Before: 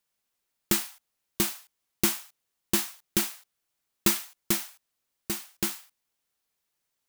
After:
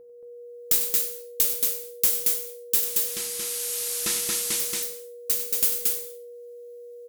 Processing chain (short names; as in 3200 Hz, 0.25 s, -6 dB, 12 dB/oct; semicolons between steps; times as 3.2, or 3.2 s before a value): 2.84–4.6 delta modulation 64 kbps, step -31.5 dBFS; pre-emphasis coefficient 0.9; AGC gain up to 12 dB; added harmonics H 6 -37 dB, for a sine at -1 dBFS; whine 480 Hz -41 dBFS; resonator 76 Hz, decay 0.42 s, harmonics all, mix 50%; loudspeakers at several distances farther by 33 m -11 dB, 78 m -2 dB; non-linear reverb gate 0.25 s falling, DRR 8.5 dB